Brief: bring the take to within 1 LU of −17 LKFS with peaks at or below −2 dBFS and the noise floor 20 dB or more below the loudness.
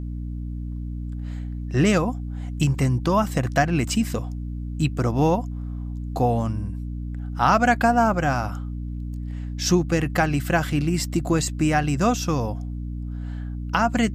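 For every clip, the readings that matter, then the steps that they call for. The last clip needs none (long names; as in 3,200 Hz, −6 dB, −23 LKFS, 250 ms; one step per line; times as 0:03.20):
mains hum 60 Hz; hum harmonics up to 300 Hz; level of the hum −28 dBFS; integrated loudness −24.0 LKFS; sample peak −5.5 dBFS; target loudness −17.0 LKFS
→ hum removal 60 Hz, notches 5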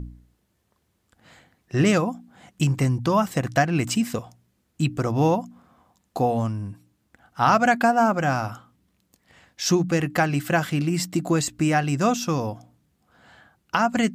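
mains hum none found; integrated loudness −23.0 LKFS; sample peak −6.0 dBFS; target loudness −17.0 LKFS
→ level +6 dB
brickwall limiter −2 dBFS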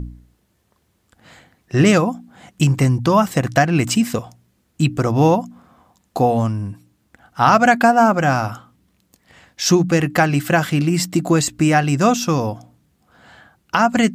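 integrated loudness −17.0 LKFS; sample peak −2.0 dBFS; background noise floor −65 dBFS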